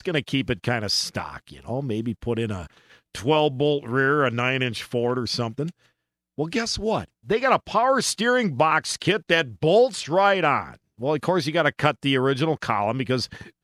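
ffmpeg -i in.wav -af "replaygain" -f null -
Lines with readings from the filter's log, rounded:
track_gain = +3.0 dB
track_peak = 0.496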